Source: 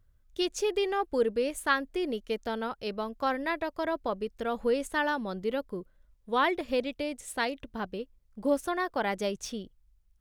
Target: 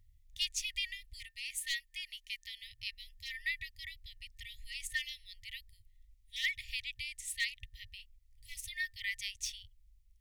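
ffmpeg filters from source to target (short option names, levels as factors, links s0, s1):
-filter_complex "[0:a]asplit=3[s0][s1][s2];[s0]afade=t=out:st=1.27:d=0.02[s3];[s1]lowshelf=f=190:t=q:w=3:g=-12,afade=t=in:st=1.27:d=0.02,afade=t=out:st=2.62:d=0.02[s4];[s2]afade=t=in:st=2.62:d=0.02[s5];[s3][s4][s5]amix=inputs=3:normalize=0,volume=8.91,asoftclip=hard,volume=0.112,afftfilt=real='re*(1-between(b*sr/4096,110,1800))':imag='im*(1-between(b*sr/4096,110,1800))':win_size=4096:overlap=0.75,volume=1.12"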